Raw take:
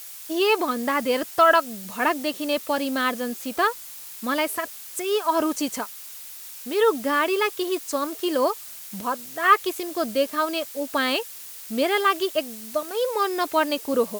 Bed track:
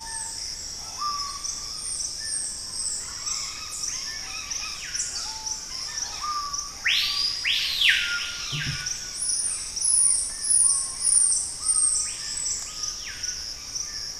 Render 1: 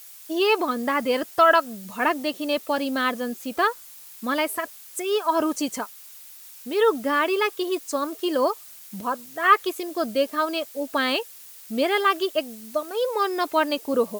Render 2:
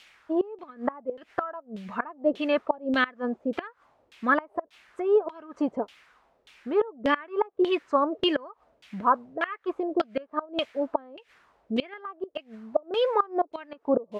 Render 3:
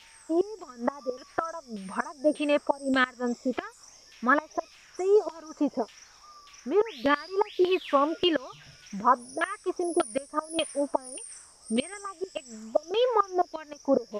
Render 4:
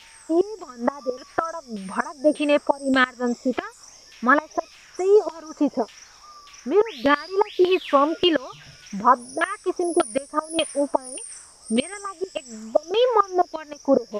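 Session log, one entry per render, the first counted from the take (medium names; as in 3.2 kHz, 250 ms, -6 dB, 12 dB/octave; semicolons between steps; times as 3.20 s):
noise reduction 6 dB, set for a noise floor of -40 dBFS
inverted gate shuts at -14 dBFS, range -24 dB; LFO low-pass saw down 1.7 Hz 430–3200 Hz
add bed track -22.5 dB
trim +5.5 dB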